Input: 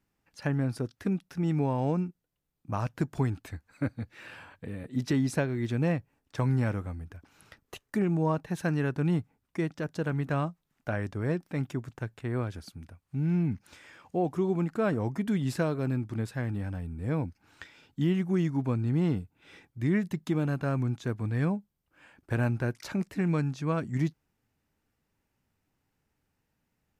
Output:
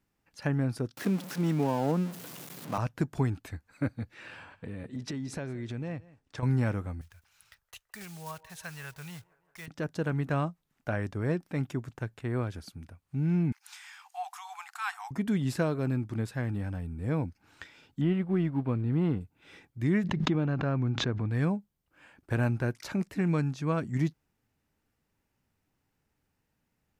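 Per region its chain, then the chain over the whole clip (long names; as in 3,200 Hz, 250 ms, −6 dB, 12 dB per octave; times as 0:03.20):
0:00.97–0:02.78: converter with a step at zero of −35.5 dBFS + high-pass filter 150 Hz 24 dB per octave
0:04.14–0:06.43: low-pass filter 8,500 Hz + downward compressor 4 to 1, threshold −34 dBFS + single-tap delay 173 ms −20.5 dB
0:07.01–0:09.68: one scale factor per block 5 bits + guitar amp tone stack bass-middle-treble 10-0-10 + delay with a band-pass on its return 166 ms, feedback 66%, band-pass 640 Hz, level −18 dB
0:13.52–0:15.11: linear-phase brick-wall high-pass 710 Hz + high-shelf EQ 2,700 Hz +9.5 dB
0:18.01–0:19.21: mu-law and A-law mismatch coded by A + moving average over 7 samples
0:20.04–0:21.31: high-frequency loss of the air 190 metres + background raised ahead of every attack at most 35 dB per second
whole clip: no processing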